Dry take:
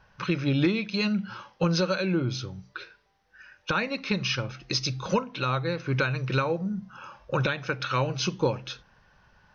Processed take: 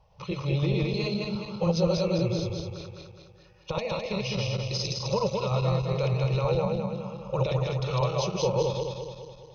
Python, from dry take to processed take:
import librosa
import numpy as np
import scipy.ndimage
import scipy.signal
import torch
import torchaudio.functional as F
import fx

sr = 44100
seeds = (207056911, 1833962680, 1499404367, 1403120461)

y = fx.reverse_delay_fb(x, sr, ms=104, feedback_pct=71, wet_db=0)
y = fx.tilt_shelf(y, sr, db=3.5, hz=1200.0)
y = fx.fixed_phaser(y, sr, hz=650.0, stages=4)
y = fx.cheby_harmonics(y, sr, harmonics=(6,), levels_db=(-44,), full_scale_db=-9.0)
y = y * librosa.db_to_amplitude(-2.0)